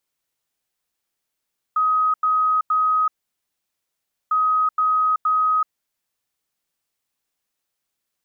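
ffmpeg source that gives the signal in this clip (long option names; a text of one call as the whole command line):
ffmpeg -f lavfi -i "aevalsrc='0.168*sin(2*PI*1260*t)*clip(min(mod(mod(t,2.55),0.47),0.38-mod(mod(t,2.55),0.47))/0.005,0,1)*lt(mod(t,2.55),1.41)':duration=5.1:sample_rate=44100" out.wav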